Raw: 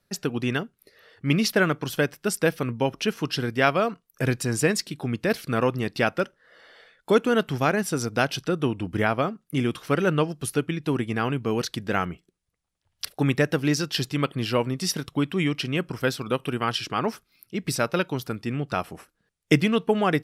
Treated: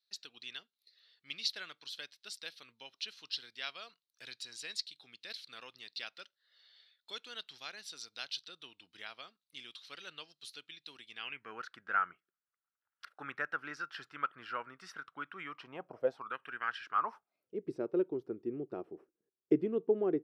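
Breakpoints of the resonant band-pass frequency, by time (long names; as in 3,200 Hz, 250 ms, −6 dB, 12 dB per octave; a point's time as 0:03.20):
resonant band-pass, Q 5.7
0:11.09 4,000 Hz
0:11.55 1,400 Hz
0:15.44 1,400 Hz
0:16.05 540 Hz
0:16.34 1,600 Hz
0:16.84 1,600 Hz
0:17.67 370 Hz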